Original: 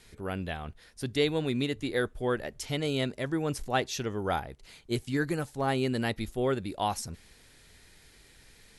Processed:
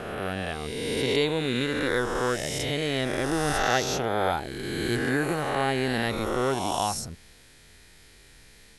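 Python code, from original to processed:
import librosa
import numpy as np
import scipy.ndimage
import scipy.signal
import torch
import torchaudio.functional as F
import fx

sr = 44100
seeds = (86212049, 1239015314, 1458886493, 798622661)

y = fx.spec_swells(x, sr, rise_s=2.25)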